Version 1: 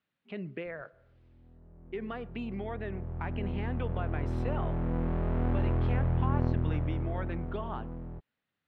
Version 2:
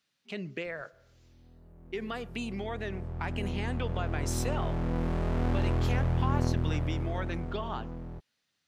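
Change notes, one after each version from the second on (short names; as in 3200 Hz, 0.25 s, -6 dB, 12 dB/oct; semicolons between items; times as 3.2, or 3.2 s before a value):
master: remove air absorption 480 m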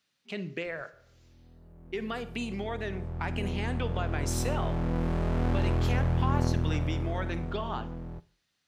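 reverb: on, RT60 0.45 s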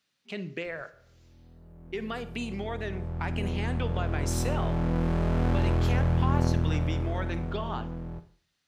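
background: send +10.0 dB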